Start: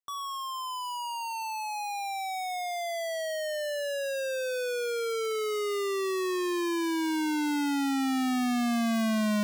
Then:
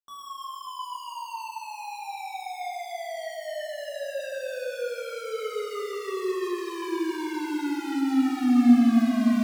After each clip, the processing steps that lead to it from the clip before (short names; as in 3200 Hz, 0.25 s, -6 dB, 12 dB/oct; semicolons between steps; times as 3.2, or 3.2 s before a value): bell 240 Hz +12 dB 0.22 oct; shoebox room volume 200 m³, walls hard, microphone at 0.91 m; gain -9 dB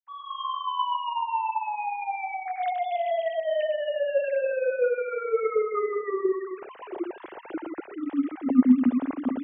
sine-wave speech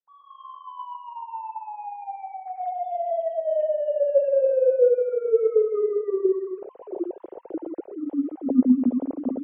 EQ curve 270 Hz 0 dB, 520 Hz +7 dB, 1700 Hz -22 dB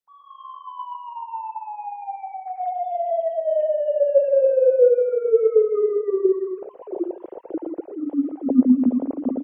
outdoor echo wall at 20 m, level -18 dB; gain +3 dB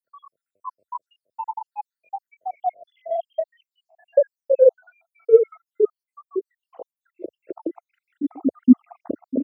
random spectral dropouts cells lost 77%; HPF 82 Hz 24 dB/oct; gain +5 dB